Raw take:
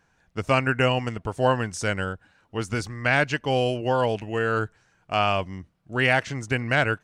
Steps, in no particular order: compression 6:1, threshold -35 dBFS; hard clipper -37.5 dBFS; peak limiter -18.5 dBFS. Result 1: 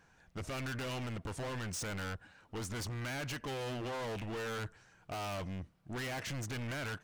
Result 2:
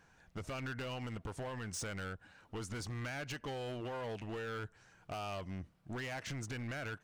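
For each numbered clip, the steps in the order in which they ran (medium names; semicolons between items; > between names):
peak limiter > hard clipper > compression; peak limiter > compression > hard clipper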